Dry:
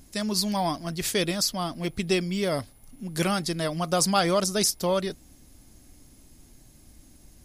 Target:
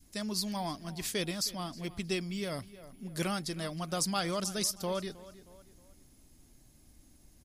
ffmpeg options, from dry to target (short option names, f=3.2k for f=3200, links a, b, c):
-filter_complex "[0:a]asplit=2[a][b];[b]adelay=314,lowpass=f=4.5k:p=1,volume=-17.5dB,asplit=2[c][d];[d]adelay=314,lowpass=f=4.5k:p=1,volume=0.39,asplit=2[e][f];[f]adelay=314,lowpass=f=4.5k:p=1,volume=0.39[g];[c][e][g]amix=inputs=3:normalize=0[h];[a][h]amix=inputs=2:normalize=0,adynamicequalizer=threshold=0.0112:dfrequency=610:dqfactor=0.72:tfrequency=610:tqfactor=0.72:attack=5:release=100:ratio=0.375:range=2.5:mode=cutabove:tftype=bell,volume=-7.5dB"